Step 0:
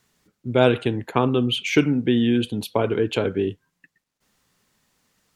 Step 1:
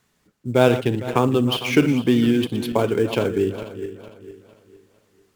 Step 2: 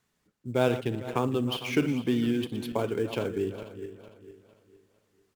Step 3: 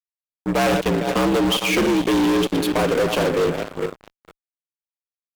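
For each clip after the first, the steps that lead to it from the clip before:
feedback delay that plays each chunk backwards 227 ms, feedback 58%, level −11 dB; in parallel at −8 dB: sample-rate reduction 7,900 Hz, jitter 20%; on the sum: level −1.5 dB
slap from a distant wall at 59 metres, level −23 dB; level −9 dB
frequency shifter +64 Hz; fuzz pedal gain 34 dB, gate −42 dBFS; level −2.5 dB

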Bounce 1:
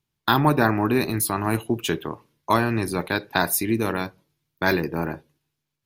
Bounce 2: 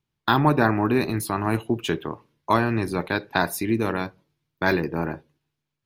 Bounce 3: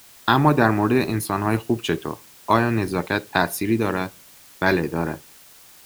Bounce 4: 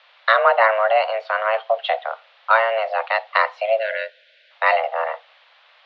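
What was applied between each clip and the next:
high-shelf EQ 6,400 Hz −11.5 dB
in parallel at −10 dB: dead-zone distortion −39.5 dBFS; on the sum: bit-depth reduction 8 bits, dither triangular
single-sideband voice off tune +330 Hz 200–3,400 Hz; gain on a spectral selection 0:03.79–0:04.51, 670–1,400 Hz −26 dB; level +2.5 dB

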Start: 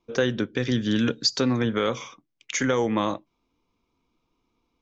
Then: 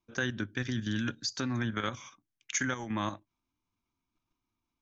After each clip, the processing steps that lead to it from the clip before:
parametric band 470 Hz −14 dB 0.39 octaves
output level in coarse steps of 9 dB
thirty-one-band graphic EQ 100 Hz +8 dB, 1,600 Hz +7 dB, 6,300 Hz +6 dB
level −5.5 dB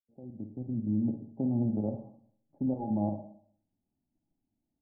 fade in at the beginning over 1.24 s
Chebyshev low-pass with heavy ripple 850 Hz, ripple 6 dB
convolution reverb RT60 0.60 s, pre-delay 39 ms, DRR 6 dB
level +5.5 dB

